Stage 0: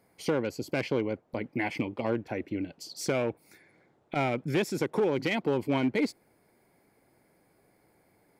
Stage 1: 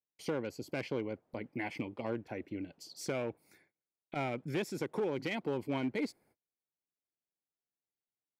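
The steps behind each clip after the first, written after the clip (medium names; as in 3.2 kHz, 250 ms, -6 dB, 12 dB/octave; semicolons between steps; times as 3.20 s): gate -58 dBFS, range -33 dB; trim -7.5 dB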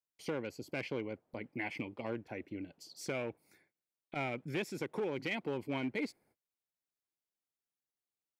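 dynamic bell 2.4 kHz, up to +5 dB, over -54 dBFS, Q 1.6; trim -2.5 dB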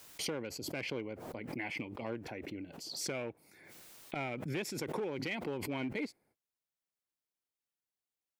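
swell ahead of each attack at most 39 dB/s; trim -1.5 dB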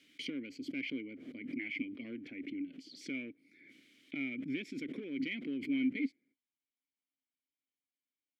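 vowel filter i; trim +9 dB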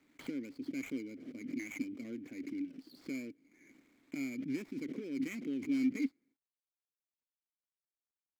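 median filter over 15 samples; trim +1 dB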